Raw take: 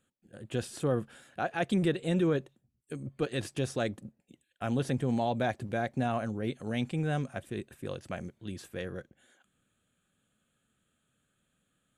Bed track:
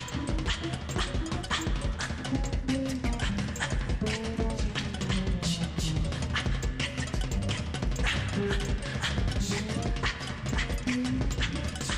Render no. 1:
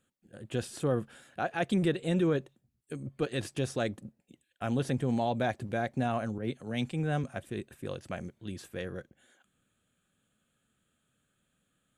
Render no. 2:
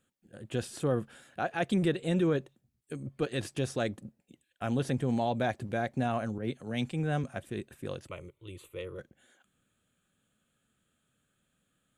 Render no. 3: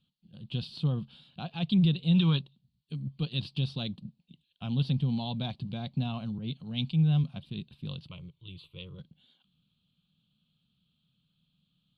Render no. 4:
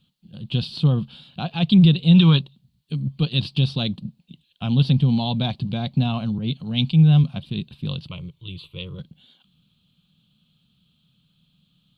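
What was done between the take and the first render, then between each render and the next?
6.38–7.24 s: three bands expanded up and down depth 70%
8.07–8.99 s: static phaser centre 1.1 kHz, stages 8
2.15–2.41 s: time-frequency box 780–6300 Hz +10 dB; FFT filter 110 Hz 0 dB, 160 Hz +10 dB, 340 Hz -12 dB, 600 Hz -14 dB, 1 kHz -5 dB, 1.8 kHz -21 dB, 2.9 kHz +5 dB, 4.4 kHz +9 dB, 6.5 kHz -25 dB, 9.3 kHz -22 dB
trim +10.5 dB

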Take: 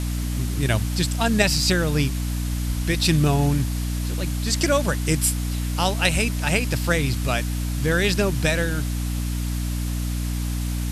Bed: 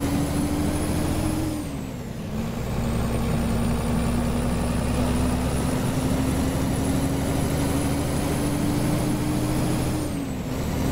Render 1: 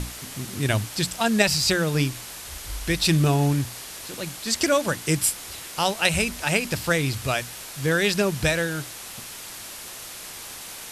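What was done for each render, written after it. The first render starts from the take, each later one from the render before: hum notches 60/120/180/240/300 Hz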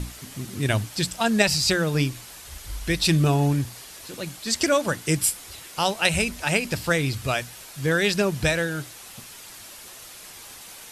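noise reduction 6 dB, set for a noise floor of -39 dBFS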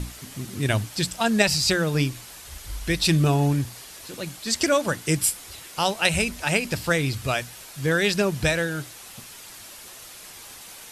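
no audible change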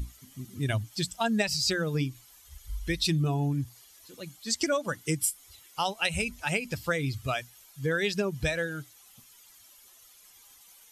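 expander on every frequency bin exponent 1.5; compression 3:1, threshold -25 dBFS, peak gain reduction 8 dB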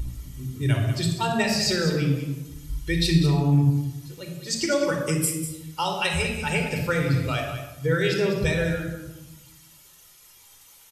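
on a send: delay 196 ms -10 dB; on the sum: simulated room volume 3600 m³, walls furnished, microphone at 4.5 m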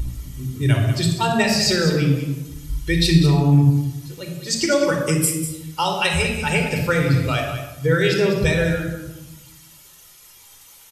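trim +5 dB

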